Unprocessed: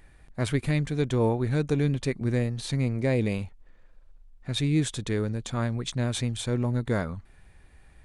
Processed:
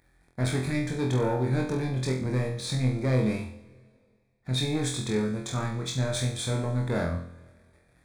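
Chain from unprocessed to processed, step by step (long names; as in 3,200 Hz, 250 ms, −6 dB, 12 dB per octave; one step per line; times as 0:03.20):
high-pass filter 55 Hz 12 dB per octave
leveller curve on the samples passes 2
Butterworth band-reject 2,900 Hz, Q 4.6
flutter between parallel walls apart 4 metres, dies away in 0.49 s
on a send at −19.5 dB: convolution reverb RT60 2.1 s, pre-delay 49 ms
on the sum: level −8 dB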